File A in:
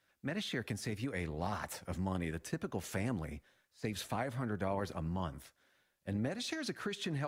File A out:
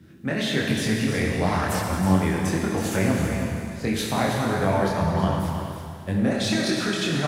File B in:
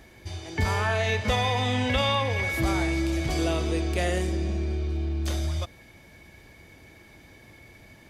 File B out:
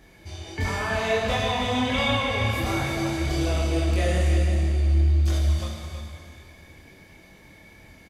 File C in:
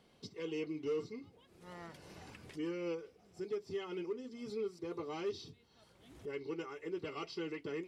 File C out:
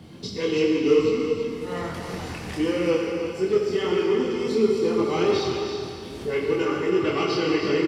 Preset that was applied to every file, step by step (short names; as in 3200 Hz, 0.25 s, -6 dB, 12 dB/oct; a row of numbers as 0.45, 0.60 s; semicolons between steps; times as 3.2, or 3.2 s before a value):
Schroeder reverb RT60 2.5 s, combs from 28 ms, DRR 0.5 dB; band noise 71–310 Hz -61 dBFS; chorus voices 2, 1.4 Hz, delay 24 ms, depth 3 ms; on a send: echo 0.324 s -8.5 dB; on the sum: match loudness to -24 LUFS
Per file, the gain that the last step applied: +15.0, +1.0, +19.0 dB